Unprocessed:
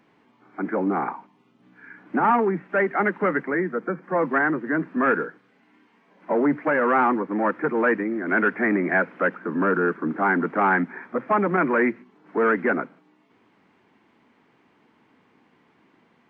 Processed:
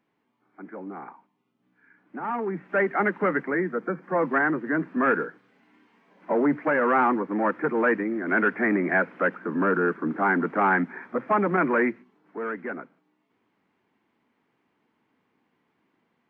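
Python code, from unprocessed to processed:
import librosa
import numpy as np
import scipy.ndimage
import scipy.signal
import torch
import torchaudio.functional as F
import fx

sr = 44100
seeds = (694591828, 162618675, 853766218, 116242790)

y = fx.gain(x, sr, db=fx.line((2.15, -14.0), (2.71, -1.5), (11.78, -1.5), (12.37, -11.0)))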